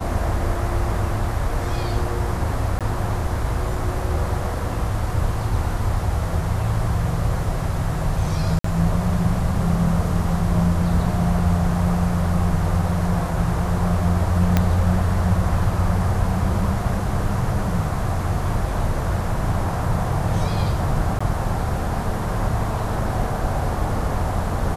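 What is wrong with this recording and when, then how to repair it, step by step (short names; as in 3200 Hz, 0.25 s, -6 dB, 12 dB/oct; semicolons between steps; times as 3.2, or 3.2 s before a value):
2.79–2.81 gap 17 ms
8.59–8.64 gap 54 ms
14.57 pop -4 dBFS
21.19–21.2 gap 15 ms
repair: de-click; interpolate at 2.79, 17 ms; interpolate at 8.59, 54 ms; interpolate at 21.19, 15 ms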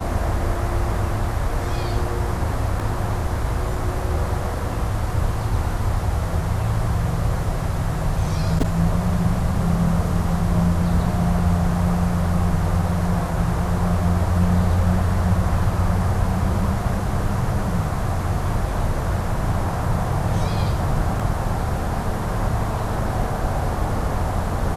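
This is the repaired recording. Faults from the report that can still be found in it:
14.57 pop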